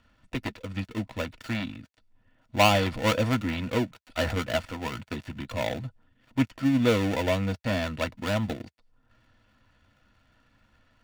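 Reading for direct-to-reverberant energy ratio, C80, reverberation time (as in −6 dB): 8.5 dB, 60.0 dB, non-exponential decay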